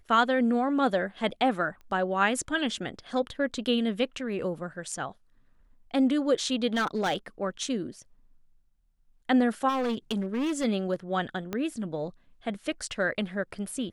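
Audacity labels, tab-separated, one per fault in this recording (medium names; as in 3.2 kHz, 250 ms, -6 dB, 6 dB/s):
1.810000	1.810000	pop -37 dBFS
4.920000	4.920000	dropout 2.9 ms
6.740000	7.160000	clipped -22.5 dBFS
9.680000	10.650000	clipped -25 dBFS
11.530000	11.530000	pop -17 dBFS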